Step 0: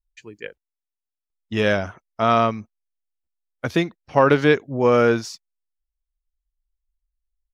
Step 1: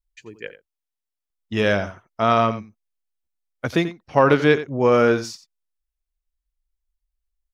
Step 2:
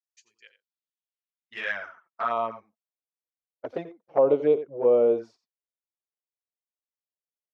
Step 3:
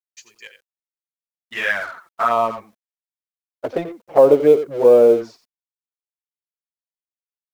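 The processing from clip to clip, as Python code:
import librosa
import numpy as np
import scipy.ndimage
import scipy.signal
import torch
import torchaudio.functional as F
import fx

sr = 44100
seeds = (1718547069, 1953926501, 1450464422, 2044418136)

y1 = x + 10.0 ** (-14.0 / 20.0) * np.pad(x, (int(88 * sr / 1000.0), 0))[:len(x)]
y2 = fx.filter_sweep_bandpass(y1, sr, from_hz=5800.0, to_hz=530.0, start_s=0.28, end_s=3.15, q=2.2)
y2 = fx.env_flanger(y2, sr, rest_ms=8.3, full_db=-17.5)
y2 = scipy.signal.sosfilt(scipy.signal.butter(2, 97.0, 'highpass', fs=sr, output='sos'), y2)
y3 = fx.law_mismatch(y2, sr, coded='mu')
y3 = F.gain(torch.from_numpy(y3), 8.5).numpy()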